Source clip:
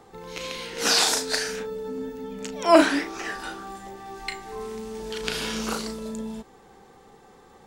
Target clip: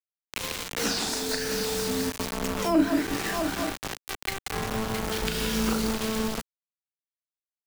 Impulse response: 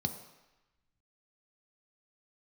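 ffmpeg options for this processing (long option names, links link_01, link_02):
-filter_complex "[0:a]afftdn=noise_reduction=13:noise_floor=-42,acrusher=bits=7:mode=log:mix=0:aa=0.000001,aecho=1:1:180|663|888:0.335|0.237|0.126,acrusher=bits=4:mix=0:aa=0.000001,acrossover=split=250[link_01][link_02];[link_02]acompressor=threshold=-34dB:ratio=10[link_03];[link_01][link_03]amix=inputs=2:normalize=0,volume=7dB"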